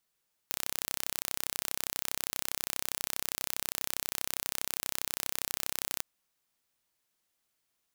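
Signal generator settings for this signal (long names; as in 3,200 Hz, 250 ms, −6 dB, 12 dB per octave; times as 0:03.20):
impulse train 32.4 per second, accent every 0, −5 dBFS 5.51 s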